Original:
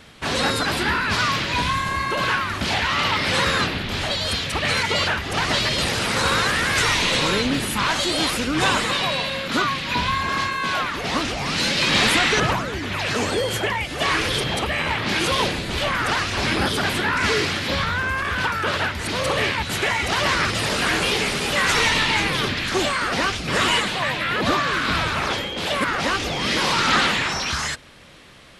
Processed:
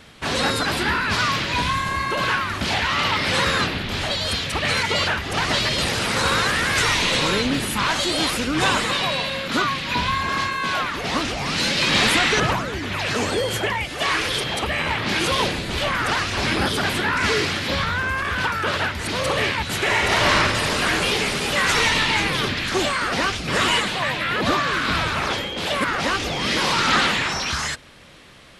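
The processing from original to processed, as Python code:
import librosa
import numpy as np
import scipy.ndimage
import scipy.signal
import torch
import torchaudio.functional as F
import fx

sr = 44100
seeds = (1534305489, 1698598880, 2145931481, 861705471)

y = fx.low_shelf(x, sr, hz=380.0, db=-5.5, at=(13.89, 14.63))
y = fx.reverb_throw(y, sr, start_s=19.82, length_s=0.52, rt60_s=2.2, drr_db=-1.5)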